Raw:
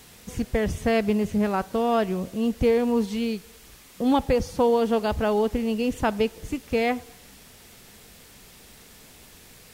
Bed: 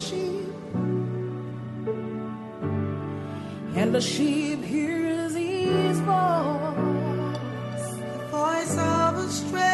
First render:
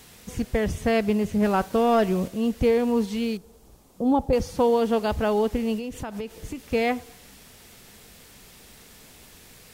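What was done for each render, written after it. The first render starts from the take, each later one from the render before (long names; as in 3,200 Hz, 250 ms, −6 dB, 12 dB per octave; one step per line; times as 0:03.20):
0:01.42–0:02.28: leveller curve on the samples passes 1
0:03.37–0:04.33: drawn EQ curve 830 Hz 0 dB, 1,900 Hz −18 dB, 7,000 Hz −10 dB
0:05.78–0:06.60: downward compressor 10 to 1, threshold −28 dBFS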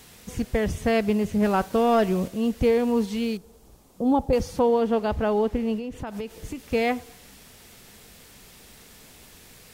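0:04.59–0:06.07: high-shelf EQ 3,700 Hz −10.5 dB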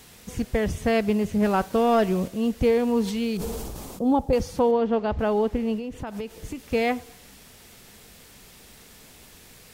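0:03.03–0:04.11: level that may fall only so fast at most 22 dB per second
0:04.71–0:05.19: high-frequency loss of the air 130 metres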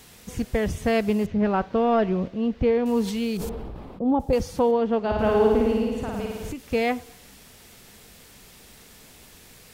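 0:01.26–0:02.86: high-frequency loss of the air 240 metres
0:03.49–0:04.20: high-frequency loss of the air 430 metres
0:04.99–0:06.52: flutter between parallel walls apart 9.4 metres, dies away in 1.4 s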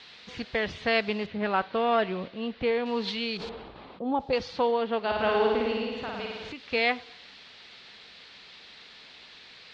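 Chebyshev low-pass filter 4,200 Hz, order 4
spectral tilt +4 dB per octave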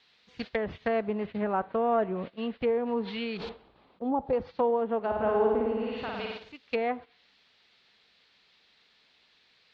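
noise gate −37 dBFS, range −15 dB
treble cut that deepens with the level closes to 1,000 Hz, closed at −24.5 dBFS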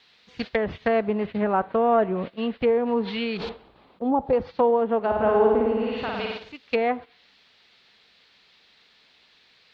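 level +6 dB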